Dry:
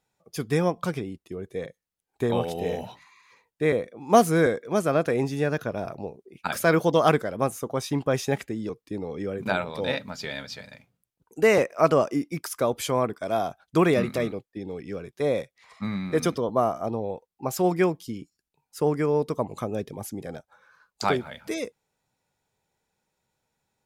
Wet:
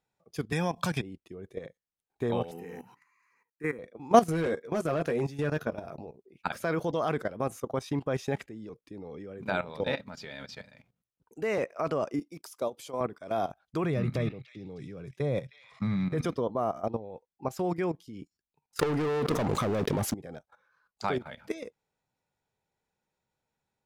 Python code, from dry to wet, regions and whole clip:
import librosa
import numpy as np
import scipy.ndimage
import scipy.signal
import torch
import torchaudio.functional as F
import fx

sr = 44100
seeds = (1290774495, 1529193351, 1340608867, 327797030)

y = fx.chain(x, sr, fx.high_shelf(hz=2100.0, db=10.5),
    fx.comb(ms=1.2, depth=0.45),
    fx.band_squash(depth_pct=70), at=(0.52, 1.02))
y = fx.chain(y, sr, fx.highpass(hz=200.0, slope=12),
    fx.high_shelf(hz=12000.0, db=11.0),
    fx.fixed_phaser(hz=1500.0, stages=4), at=(2.51, 3.79))
y = fx.chain(y, sr, fx.high_shelf(hz=8600.0, db=6.0),
    fx.doubler(ms=13.0, db=-7.0),
    fx.overload_stage(gain_db=16.5), at=(4.29, 6.07))
y = fx.chain(y, sr, fx.highpass(hz=530.0, slope=6),
    fx.peak_eq(hz=1700.0, db=-14.0, octaves=1.2), at=(12.19, 13.01))
y = fx.chain(y, sr, fx.peak_eq(hz=130.0, db=14.5, octaves=0.73),
    fx.echo_stepped(ms=310, hz=2900.0, octaves=0.7, feedback_pct=70, wet_db=-7), at=(13.84, 16.21))
y = fx.chain(y, sr, fx.leveller(passes=5),
    fx.env_flatten(amount_pct=70), at=(18.79, 20.14))
y = fx.level_steps(y, sr, step_db=14)
y = fx.high_shelf(y, sr, hz=6200.0, db=-9.0)